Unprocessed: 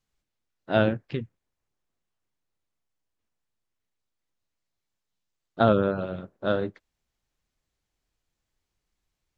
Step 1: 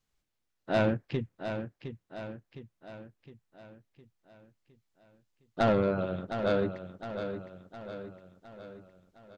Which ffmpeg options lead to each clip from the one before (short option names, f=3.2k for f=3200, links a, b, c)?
-filter_complex "[0:a]asoftclip=type=tanh:threshold=-19dB,asplit=2[a][b];[b]aecho=0:1:711|1422|2133|2844|3555|4266:0.355|0.185|0.0959|0.0499|0.0259|0.0135[c];[a][c]amix=inputs=2:normalize=0"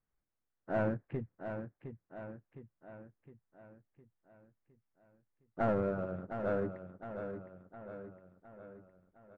-filter_complex "[0:a]lowpass=f=1.9k:w=0.5412,lowpass=f=1.9k:w=1.3066,asplit=2[a][b];[b]aeval=exprs='clip(val(0),-1,0.0133)':c=same,volume=-10dB[c];[a][c]amix=inputs=2:normalize=0,volume=-7.5dB"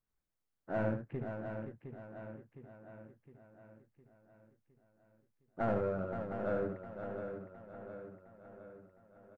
-af "aecho=1:1:73|521:0.501|0.376,volume=-2.5dB"